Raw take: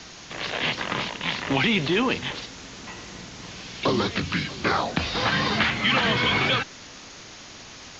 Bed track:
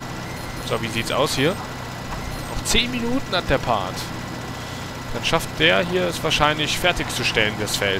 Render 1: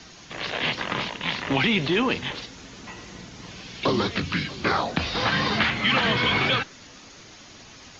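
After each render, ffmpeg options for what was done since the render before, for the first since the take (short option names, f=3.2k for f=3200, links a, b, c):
-af "afftdn=nr=6:nf=-43"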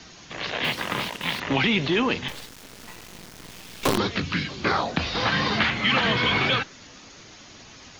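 -filter_complex "[0:a]asettb=1/sr,asplit=3[a][b][c];[a]atrim=end=0.644[d];[b]atrim=start=0.64:end=1.4,asetpts=PTS-STARTPTS,afade=t=in:d=0.004:c=qsin,afade=t=out:st=0.756:d=0.004:c=qsin,acrusher=bits=5:mix=0:aa=0.5[e];[c]atrim=start=1.396[f];[d][e]acrossfade=d=0.004:c1=hsin:c2=qsin[g];[g][f]acrossfade=d=0.004:c1=qsin:c2=hsin,asettb=1/sr,asplit=3[h][i][j];[h]atrim=end=2.284[k];[i]atrim=start=2.28:end=3.98,asetpts=PTS-STARTPTS,afade=t=in:d=0.004:c=qsin,afade=t=out:st=1.696:d=0.004:c=qsin,acrusher=bits=4:dc=4:mix=0:aa=0.000001[l];[j]atrim=start=3.976[m];[k][l]acrossfade=d=0.004:c1=hsin:c2=qsin[n];[n][m]acrossfade=d=0.004:c1=qsin:c2=hsin"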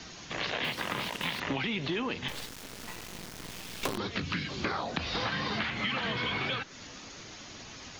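-af "acompressor=threshold=-29dB:ratio=10"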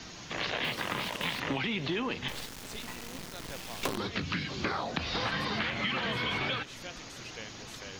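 -filter_complex "[1:a]volume=-26dB[a];[0:a][a]amix=inputs=2:normalize=0"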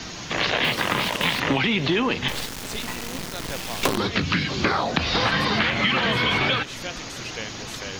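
-af "volume=10.5dB"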